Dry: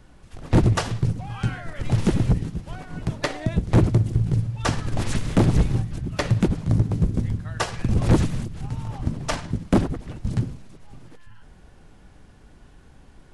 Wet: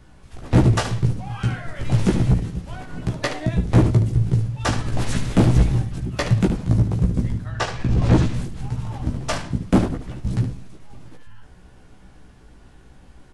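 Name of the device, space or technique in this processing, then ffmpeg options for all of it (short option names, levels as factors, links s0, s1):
slapback doubling: -filter_complex "[0:a]asettb=1/sr,asplit=3[s0][s1][s2];[s0]atrim=end=7.494[s3];[s1]atrim=start=7.49:end=8.34,asetpts=PTS-STARTPTS,afade=t=in:d=0.004:c=qsin,afade=t=out:st=0.846:d=0.004:c=qsin,lowpass=6200[s4];[s2]atrim=start=8.336[s5];[s3][s4]acrossfade=d=0.004:c1=hsin:c2=qsin[s6];[s6][s5]acrossfade=d=0.004:c1=qsin:c2=hsin,asplit=3[s7][s8][s9];[s8]adelay=16,volume=0.668[s10];[s9]adelay=73,volume=0.355[s11];[s7][s10][s11]amix=inputs=3:normalize=0"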